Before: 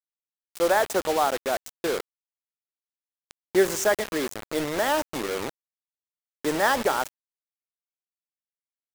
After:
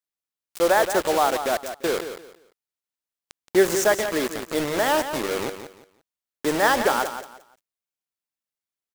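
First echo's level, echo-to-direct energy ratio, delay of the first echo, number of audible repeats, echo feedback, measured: -10.0 dB, -9.5 dB, 0.173 s, 3, 25%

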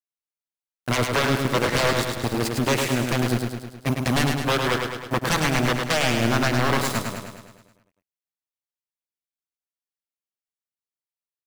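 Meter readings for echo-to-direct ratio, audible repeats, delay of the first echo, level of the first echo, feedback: -3.0 dB, 7, 0.105 s, -4.5 dB, 57%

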